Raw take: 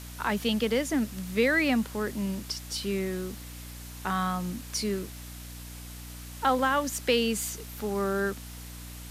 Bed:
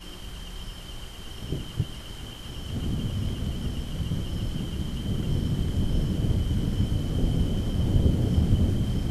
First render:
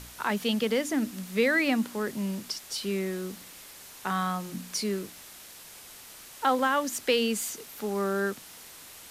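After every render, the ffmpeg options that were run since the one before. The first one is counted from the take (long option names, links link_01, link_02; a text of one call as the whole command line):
ffmpeg -i in.wav -af "bandreject=frequency=60:width_type=h:width=4,bandreject=frequency=120:width_type=h:width=4,bandreject=frequency=180:width_type=h:width=4,bandreject=frequency=240:width_type=h:width=4,bandreject=frequency=300:width_type=h:width=4" out.wav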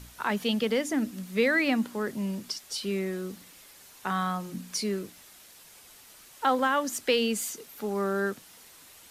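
ffmpeg -i in.wav -af "afftdn=noise_reduction=6:noise_floor=-48" out.wav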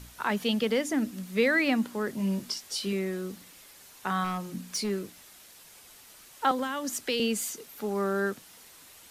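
ffmpeg -i in.wav -filter_complex "[0:a]asettb=1/sr,asplit=3[link_01][link_02][link_03];[link_01]atrim=end=2.174[link_04];[link_02]atrim=start=2.17:end=2.93,asetpts=PTS-STARTPTS,afade=type=in:duration=0.004:curve=qsin,afade=type=out:start_time=0.756:duration=0.004:curve=qsin,asplit=2[link_05][link_06];[link_06]adelay=21,volume=-5dB[link_07];[link_05][link_07]amix=inputs=2:normalize=0,atrim=end_sample=33516[link_08];[link_03]atrim=start=2.926[link_09];[link_04][link_08]acrossfade=duration=0.004:curve1=hsin:curve2=qsin[link_10];[link_10][link_09]acrossfade=duration=0.004:curve1=qsin:curve2=hsin,asettb=1/sr,asplit=3[link_11][link_12][link_13];[link_11]atrim=end=4.244[link_14];[link_12]atrim=start=4.24:end=4.9,asetpts=PTS-STARTPTS,afade=type=in:duration=0.004:curve=qsin,afade=type=out:start_time=0.656:duration=0.004:curve=qsin,volume=25dB,asoftclip=hard,volume=-25dB[link_15];[link_13]atrim=start=4.896[link_16];[link_14][link_15]acrossfade=duration=0.004:curve1=hsin:curve2=qsin[link_17];[link_17][link_16]acrossfade=duration=0.004:curve1=qsin:curve2=hsin,asettb=1/sr,asplit=3[link_18][link_19][link_20];[link_18]atrim=end=6.514[link_21];[link_19]atrim=start=6.51:end=7.2,asetpts=PTS-STARTPTS,afade=type=in:duration=0.004:curve=qsin,afade=type=out:start_time=0.686:duration=0.004:curve=qsin,acrossover=split=270|3000[link_22][link_23][link_24];[link_23]acompressor=threshold=-30dB:ratio=6:attack=3.2:release=140:knee=2.83:detection=peak[link_25];[link_22][link_25][link_24]amix=inputs=3:normalize=0[link_26];[link_20]atrim=start=7.196[link_27];[link_21][link_26]acrossfade=duration=0.004:curve1=hsin:curve2=qsin[link_28];[link_28][link_27]acrossfade=duration=0.004:curve1=qsin:curve2=hsin" out.wav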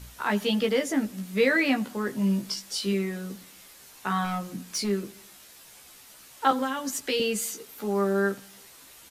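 ffmpeg -i in.wav -filter_complex "[0:a]asplit=2[link_01][link_02];[link_02]adelay=15,volume=-3dB[link_03];[link_01][link_03]amix=inputs=2:normalize=0,asplit=2[link_04][link_05];[link_05]adelay=87,lowpass=frequency=2000:poles=1,volume=-21.5dB,asplit=2[link_06][link_07];[link_07]adelay=87,lowpass=frequency=2000:poles=1,volume=0.55,asplit=2[link_08][link_09];[link_09]adelay=87,lowpass=frequency=2000:poles=1,volume=0.55,asplit=2[link_10][link_11];[link_11]adelay=87,lowpass=frequency=2000:poles=1,volume=0.55[link_12];[link_04][link_06][link_08][link_10][link_12]amix=inputs=5:normalize=0" out.wav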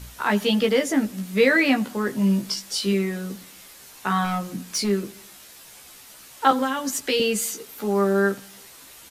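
ffmpeg -i in.wav -af "volume=4.5dB" out.wav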